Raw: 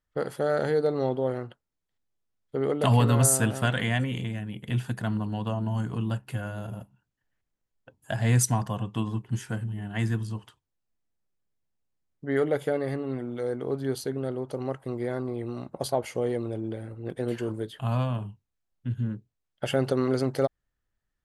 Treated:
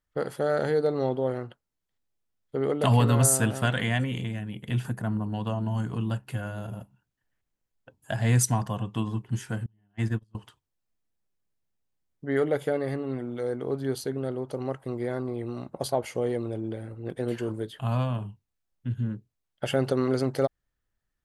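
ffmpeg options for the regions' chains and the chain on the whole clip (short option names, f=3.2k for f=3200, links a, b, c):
-filter_complex "[0:a]asettb=1/sr,asplit=3[a][b][c];[a]atrim=end=4.854[d];[b]atrim=start=4.85:end=5.34,asetpts=PTS-STARTPTS,afade=t=in:d=0.004:c=qsin,afade=t=out:st=0.486:d=0.004:c=qsin,equalizer=f=3.7k:t=o:w=1.5:g=-12.5,acompressor=mode=upward:threshold=-31dB:ratio=2.5:attack=3.2:release=140:knee=2.83:detection=peak[e];[c]atrim=start=5.336[f];[d][e]acrossfade=d=0.004:c1=hsin:c2=qsin[g];[g][f]acrossfade=d=0.004:c1=qsin:c2=hsin,asettb=1/sr,asplit=3[h][i][j];[h]atrim=end=9.664[k];[i]atrim=start=9.66:end=10.35,asetpts=PTS-STARTPTS,afade=t=in:d=0.004:c=qsin,afade=t=out:st=0.686:d=0.004:c=qsin,agate=range=-32dB:threshold=-28dB:ratio=16:release=100:detection=peak,highshelf=f=5k:g=-5[l];[j]atrim=start=10.346[m];[k][l]acrossfade=d=0.004:c1=hsin:c2=qsin[n];[n][m]acrossfade=d=0.004:c1=qsin:c2=hsin"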